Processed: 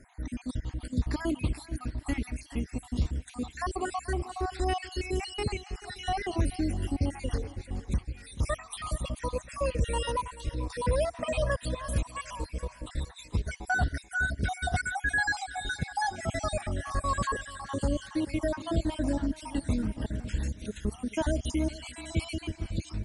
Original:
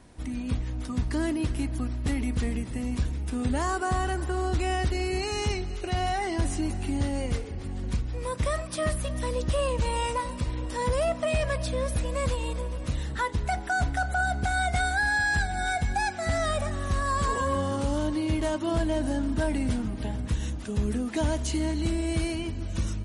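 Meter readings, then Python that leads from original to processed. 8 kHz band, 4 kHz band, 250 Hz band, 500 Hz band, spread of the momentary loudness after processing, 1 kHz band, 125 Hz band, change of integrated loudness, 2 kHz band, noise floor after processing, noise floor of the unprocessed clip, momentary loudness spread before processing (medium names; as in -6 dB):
-4.0 dB, -3.5 dB, -3.5 dB, -4.0 dB, 7 LU, -4.5 dB, -3.5 dB, -4.0 dB, -3.5 dB, -52 dBFS, -36 dBFS, 6 LU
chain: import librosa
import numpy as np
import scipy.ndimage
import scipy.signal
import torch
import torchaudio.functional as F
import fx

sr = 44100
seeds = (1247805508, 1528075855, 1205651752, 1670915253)

p1 = fx.spec_dropout(x, sr, seeds[0], share_pct=58)
p2 = fx.dmg_noise_band(p1, sr, seeds[1], low_hz=1500.0, high_hz=2300.0, level_db=-71.0)
y = p2 + fx.echo_feedback(p2, sr, ms=435, feedback_pct=39, wet_db=-17.0, dry=0)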